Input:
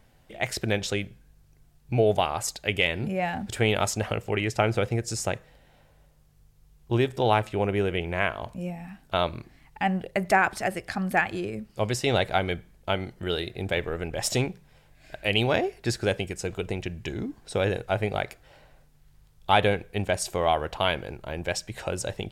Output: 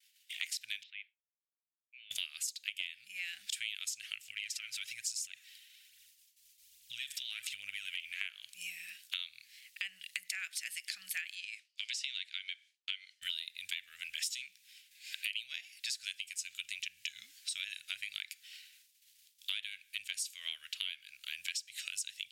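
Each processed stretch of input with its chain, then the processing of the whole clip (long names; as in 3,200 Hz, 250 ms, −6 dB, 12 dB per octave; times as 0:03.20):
0:00.83–0:02.11: four-pole ladder band-pass 2,400 Hz, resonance 35% + high-frequency loss of the air 410 metres
0:04.31–0:08.21: downward compressor 12 to 1, threshold −30 dBFS + phase shifter 1.2 Hz, delay 3.4 ms, feedback 42%
0:11.35–0:13.22: high-pass filter 1,400 Hz + high-frequency loss of the air 80 metres
whole clip: downward expander −51 dBFS; inverse Chebyshev high-pass filter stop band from 990 Hz, stop band 50 dB; downward compressor 8 to 1, threshold −49 dBFS; level +12.5 dB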